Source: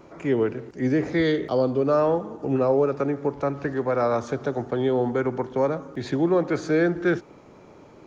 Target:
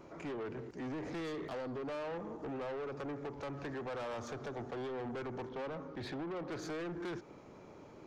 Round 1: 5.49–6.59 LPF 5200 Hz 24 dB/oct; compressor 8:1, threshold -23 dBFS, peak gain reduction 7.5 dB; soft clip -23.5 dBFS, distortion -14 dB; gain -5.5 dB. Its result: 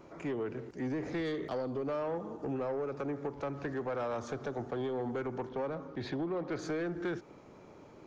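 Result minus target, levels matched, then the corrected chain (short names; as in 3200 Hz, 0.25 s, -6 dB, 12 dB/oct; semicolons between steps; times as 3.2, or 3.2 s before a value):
soft clip: distortion -8 dB
5.49–6.59 LPF 5200 Hz 24 dB/oct; compressor 8:1, threshold -23 dBFS, peak gain reduction 7.5 dB; soft clip -32.5 dBFS, distortion -7 dB; gain -5.5 dB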